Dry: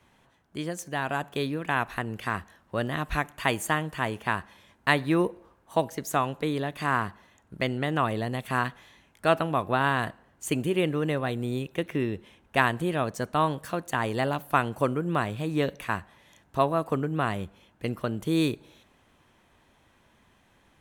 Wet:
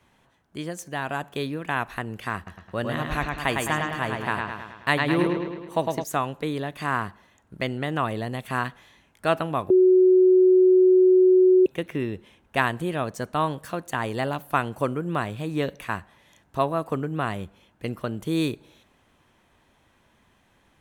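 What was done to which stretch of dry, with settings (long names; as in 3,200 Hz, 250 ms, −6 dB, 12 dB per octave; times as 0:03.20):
0:02.36–0:06.04: bucket-brigade delay 106 ms, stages 4,096, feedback 57%, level −3.5 dB
0:09.70–0:11.66: beep over 370 Hz −12.5 dBFS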